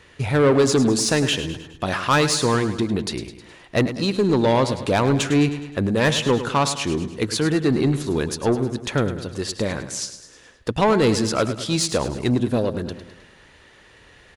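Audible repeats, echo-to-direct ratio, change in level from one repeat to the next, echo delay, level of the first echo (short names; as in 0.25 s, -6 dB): 5, -10.0 dB, -6.0 dB, 0.104 s, -11.5 dB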